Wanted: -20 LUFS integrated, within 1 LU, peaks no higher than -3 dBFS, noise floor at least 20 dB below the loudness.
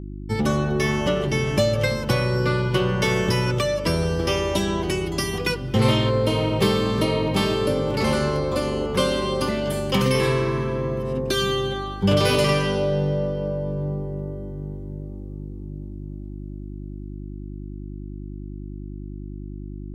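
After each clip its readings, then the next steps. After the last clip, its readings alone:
hum 50 Hz; highest harmonic 350 Hz; hum level -31 dBFS; loudness -22.5 LUFS; peak level -6.5 dBFS; loudness target -20.0 LUFS
-> de-hum 50 Hz, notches 7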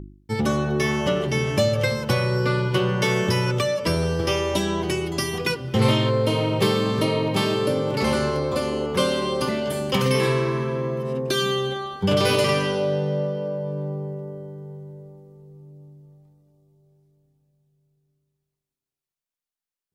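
hum not found; loudness -23.0 LUFS; peak level -7.0 dBFS; loudness target -20.0 LUFS
-> trim +3 dB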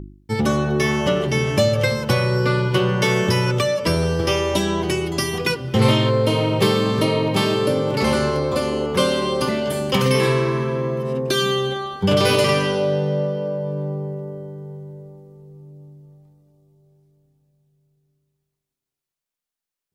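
loudness -20.0 LUFS; peak level -4.0 dBFS; noise floor -87 dBFS

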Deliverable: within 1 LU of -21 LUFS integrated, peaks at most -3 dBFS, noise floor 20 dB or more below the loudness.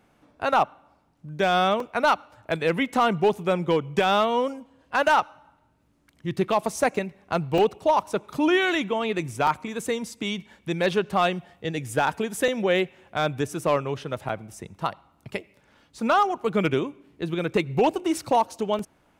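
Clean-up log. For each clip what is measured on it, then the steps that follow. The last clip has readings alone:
clipped samples 0.3%; clipping level -12.5 dBFS; dropouts 6; longest dropout 2.8 ms; loudness -25.0 LUFS; peak level -12.5 dBFS; loudness target -21.0 LUFS
-> clip repair -12.5 dBFS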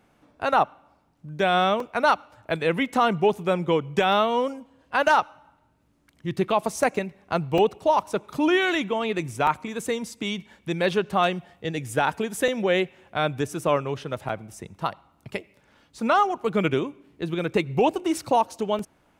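clipped samples 0.0%; dropouts 6; longest dropout 2.8 ms
-> interpolate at 1.80/7.58/9.47/12.48/14.29/18.79 s, 2.8 ms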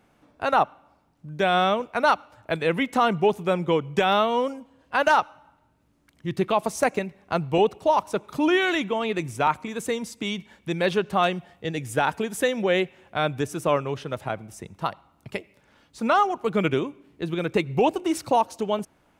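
dropouts 0; loudness -24.5 LUFS; peak level -7.0 dBFS; loudness target -21.0 LUFS
-> trim +3.5 dB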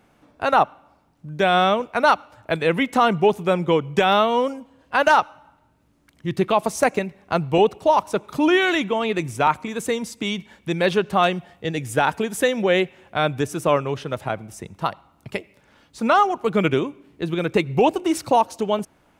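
loudness -21.0 LUFS; peak level -3.5 dBFS; noise floor -60 dBFS

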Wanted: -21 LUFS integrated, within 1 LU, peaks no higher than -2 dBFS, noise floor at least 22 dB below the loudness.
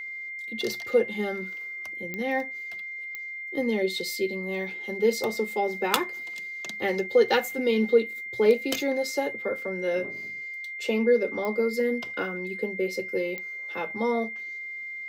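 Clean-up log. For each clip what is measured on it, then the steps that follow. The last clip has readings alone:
clicks found 4; steady tone 2.1 kHz; tone level -34 dBFS; loudness -27.5 LUFS; peak level -6.5 dBFS; loudness target -21.0 LUFS
-> de-click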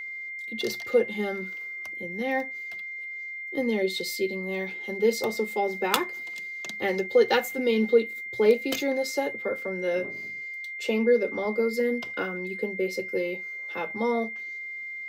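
clicks found 0; steady tone 2.1 kHz; tone level -34 dBFS
-> band-stop 2.1 kHz, Q 30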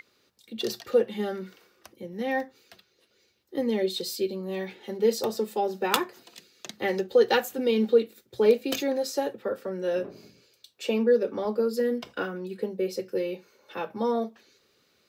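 steady tone not found; loudness -27.5 LUFS; peak level -6.5 dBFS; loudness target -21.0 LUFS
-> trim +6.5 dB; peak limiter -2 dBFS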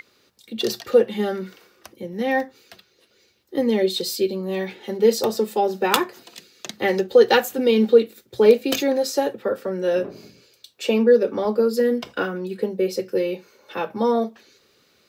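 loudness -21.5 LUFS; peak level -2.0 dBFS; noise floor -62 dBFS

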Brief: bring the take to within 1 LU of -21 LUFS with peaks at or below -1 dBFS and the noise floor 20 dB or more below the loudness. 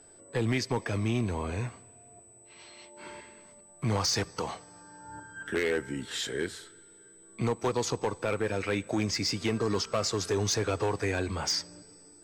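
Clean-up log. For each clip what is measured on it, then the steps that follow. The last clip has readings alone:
clipped samples 1.3%; clipping level -22.0 dBFS; steady tone 8 kHz; tone level -54 dBFS; loudness -30.5 LUFS; peak level -22.0 dBFS; loudness target -21.0 LUFS
-> clip repair -22 dBFS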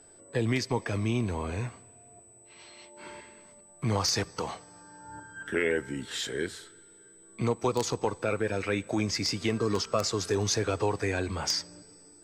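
clipped samples 0.0%; steady tone 8 kHz; tone level -54 dBFS
-> band-stop 8 kHz, Q 30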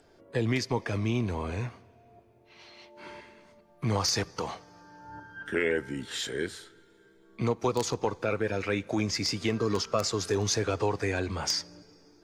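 steady tone not found; loudness -30.0 LUFS; peak level -13.0 dBFS; loudness target -21.0 LUFS
-> trim +9 dB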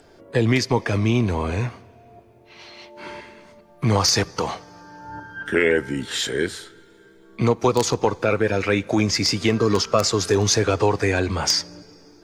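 loudness -21.0 LUFS; peak level -4.0 dBFS; noise floor -51 dBFS

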